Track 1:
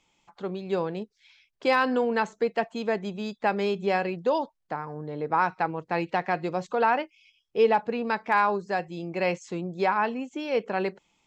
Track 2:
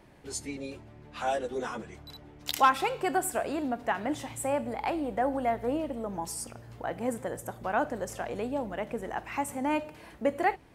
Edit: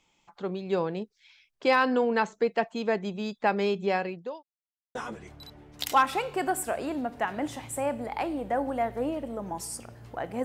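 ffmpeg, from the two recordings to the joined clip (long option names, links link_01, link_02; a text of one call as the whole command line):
ffmpeg -i cue0.wav -i cue1.wav -filter_complex "[0:a]apad=whole_dur=10.44,atrim=end=10.44,asplit=2[link_01][link_02];[link_01]atrim=end=4.43,asetpts=PTS-STARTPTS,afade=type=out:start_time=3.6:duration=0.83:curve=qsin[link_03];[link_02]atrim=start=4.43:end=4.95,asetpts=PTS-STARTPTS,volume=0[link_04];[1:a]atrim=start=1.62:end=7.11,asetpts=PTS-STARTPTS,afade=type=in:duration=0.004:curve=hsin[link_05];[link_03][link_04][link_05]concat=n=3:v=0:a=1" out.wav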